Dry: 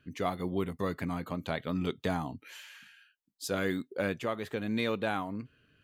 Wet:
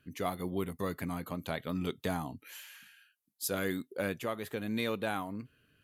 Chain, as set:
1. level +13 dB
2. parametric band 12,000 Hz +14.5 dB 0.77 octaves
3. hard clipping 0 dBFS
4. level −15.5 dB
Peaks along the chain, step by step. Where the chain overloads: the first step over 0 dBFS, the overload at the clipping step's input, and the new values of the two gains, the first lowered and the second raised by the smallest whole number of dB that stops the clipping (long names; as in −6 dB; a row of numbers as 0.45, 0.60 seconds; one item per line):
−4.0, −3.5, −3.5, −19.0 dBFS
no step passes full scale